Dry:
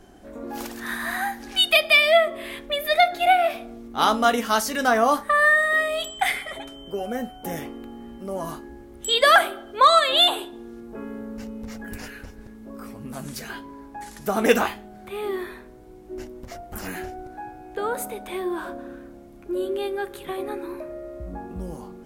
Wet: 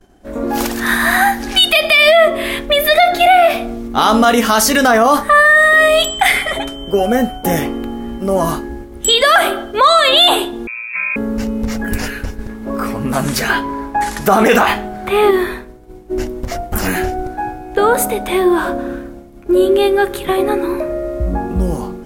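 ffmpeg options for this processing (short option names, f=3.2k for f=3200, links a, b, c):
-filter_complex "[0:a]asettb=1/sr,asplit=3[a][b][c];[a]atrim=end=10.674[d];[b]atrim=start=10.67:end=11.16,asetpts=PTS-STARTPTS,afade=t=in:d=0.004:c=qsin,afade=t=out:st=0.486:d=0.004:c=qsin,lowpass=f=2.3k:t=q:w=0.5098,lowpass=f=2.3k:t=q:w=0.6013,lowpass=f=2.3k:t=q:w=0.9,lowpass=f=2.3k:t=q:w=2.563,afreqshift=-2700[e];[c]atrim=start=11.156[f];[d][e]acrossfade=d=0.004:c1=hsin:c2=qsin[g];[g][f]acrossfade=d=0.004:c1=qsin:c2=hsin,asettb=1/sr,asplit=3[h][i][j];[h]atrim=end=12.494[k];[i]atrim=start=12.49:end=15.31,asetpts=PTS-STARTPTS,afade=t=in:d=0.004:c=qsin,afade=t=out:st=2.816:d=0.004:c=qsin,equalizer=f=1.2k:w=0.42:g=6.5[l];[j]atrim=start=15.306[m];[k][l]acrossfade=d=0.004:c1=hsin:c2=qsin[n];[n][m]acrossfade=d=0.004:c1=qsin:c2=hsin,lowshelf=f=72:g=6,agate=range=-33dB:threshold=-37dB:ratio=3:detection=peak,alimiter=level_in=16dB:limit=-1dB:release=50:level=0:latency=1,volume=-1dB"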